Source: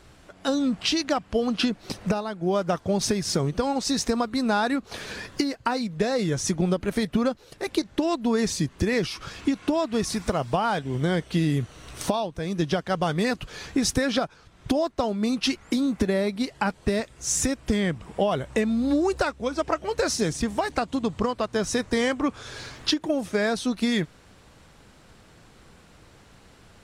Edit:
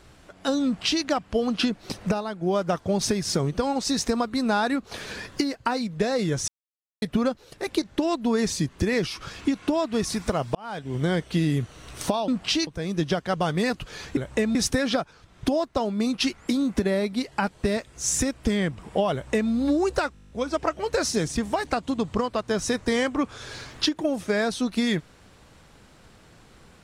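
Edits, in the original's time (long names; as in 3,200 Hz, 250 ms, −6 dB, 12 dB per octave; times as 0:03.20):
0:00.65–0:01.04: duplicate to 0:12.28
0:06.48–0:07.02: silence
0:10.55–0:11.00: fade in linear
0:18.36–0:18.74: duplicate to 0:13.78
0:19.36: stutter 0.02 s, 10 plays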